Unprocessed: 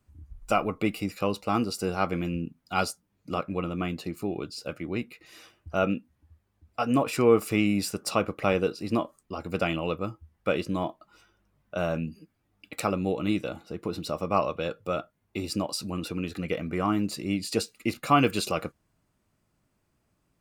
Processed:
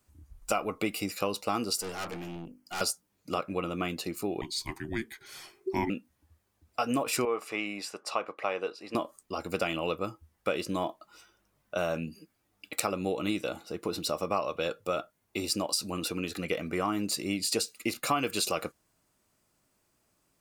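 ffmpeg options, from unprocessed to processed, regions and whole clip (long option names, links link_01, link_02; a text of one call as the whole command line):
ffmpeg -i in.wav -filter_complex "[0:a]asettb=1/sr,asplit=3[link_01][link_02][link_03];[link_01]atrim=end=1.814[link_04];[link_02]atrim=start=1.81:end=2.81,asetpts=PTS-STARTPTS,afade=type=in:duration=0.004:curve=qsin,afade=type=out:start_time=0.996:duration=0.004:curve=qsin,asuperstop=centerf=3700:order=4:qfactor=3.9,bandreject=frequency=50:width_type=h:width=6,bandreject=frequency=100:width_type=h:width=6,bandreject=frequency=150:width_type=h:width=6,bandreject=frequency=200:width_type=h:width=6,bandreject=frequency=250:width_type=h:width=6,bandreject=frequency=300:width_type=h:width=6,bandreject=frequency=350:width_type=h:width=6,bandreject=frequency=400:width_type=h:width=6,aeval=exprs='(tanh(50.1*val(0)+0.55)-tanh(0.55))/50.1':channel_layout=same[link_05];[link_03]atrim=start=2.806[link_06];[link_04][link_05]acrossfade=duration=0.004:curve1=hsin:curve2=qsin[link_07];[link_07][link_06]acrossfade=duration=0.004:curve1=qsin:curve2=hsin,asettb=1/sr,asplit=3[link_08][link_09][link_10];[link_08]atrim=end=4.414[link_11];[link_09]atrim=start=4.41:end=5.9,asetpts=PTS-STARTPTS,afade=type=in:duration=0.004:curve=qsin,afade=type=out:start_time=1.486:duration=0.004:curve=qsin,asubboost=boost=12:cutoff=110,afreqshift=-460[link_12];[link_10]atrim=start=5.896[link_13];[link_11][link_12]acrossfade=duration=0.004:curve1=hsin:curve2=qsin[link_14];[link_14][link_13]acrossfade=duration=0.004:curve1=qsin:curve2=hsin,asettb=1/sr,asplit=3[link_15][link_16][link_17];[link_15]atrim=end=7.254[link_18];[link_16]atrim=start=7.25:end=8.95,asetpts=PTS-STARTPTS,afade=type=in:duration=0.004:curve=qsin,afade=type=out:start_time=1.696:duration=0.004:curve=qsin,bandpass=frequency=1200:width_type=q:width=0.9,equalizer=frequency=1400:width=4.5:gain=-5.5[link_19];[link_17]atrim=start=8.946[link_20];[link_18][link_19]acrossfade=duration=0.004:curve1=hsin:curve2=qsin[link_21];[link_21][link_20]acrossfade=duration=0.004:curve1=qsin:curve2=hsin,bass=frequency=250:gain=-8,treble=frequency=4000:gain=7,acompressor=threshold=-27dB:ratio=4,volume=1.5dB" out.wav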